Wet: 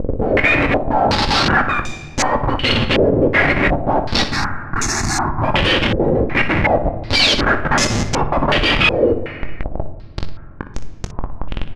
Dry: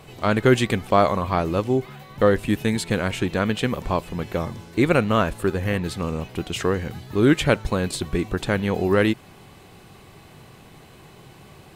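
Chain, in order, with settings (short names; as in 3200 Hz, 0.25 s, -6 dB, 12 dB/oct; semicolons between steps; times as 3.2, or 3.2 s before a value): spectrum mirrored in octaves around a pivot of 970 Hz; in parallel at +1.5 dB: upward compressor, threshold -24 dBFS; on the sum: transient shaper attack +12 dB, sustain -3 dB; Schmitt trigger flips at -19.5 dBFS; 4.28–5.42 fixed phaser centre 1300 Hz, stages 4; early reflections 21 ms -12.5 dB, 60 ms -14.5 dB; on a send at -8.5 dB: reverb RT60 1.7 s, pre-delay 4 ms; on the sum: stepped low-pass 2.7 Hz 480–6400 Hz; gain -3 dB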